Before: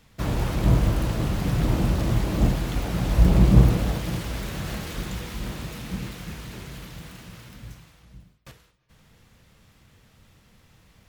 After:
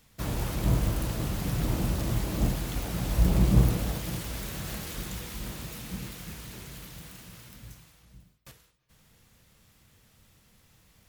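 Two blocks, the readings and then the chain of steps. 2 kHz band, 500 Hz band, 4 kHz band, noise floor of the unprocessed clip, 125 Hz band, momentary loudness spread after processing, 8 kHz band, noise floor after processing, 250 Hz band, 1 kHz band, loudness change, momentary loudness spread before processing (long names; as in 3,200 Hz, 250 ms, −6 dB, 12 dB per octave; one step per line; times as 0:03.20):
−5.0 dB, −6.0 dB, −3.0 dB, −59 dBFS, −6.0 dB, 20 LU, +1.0 dB, −63 dBFS, −6.0 dB, −5.5 dB, −6.0 dB, 21 LU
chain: high-shelf EQ 6,200 Hz +11.5 dB
level −6 dB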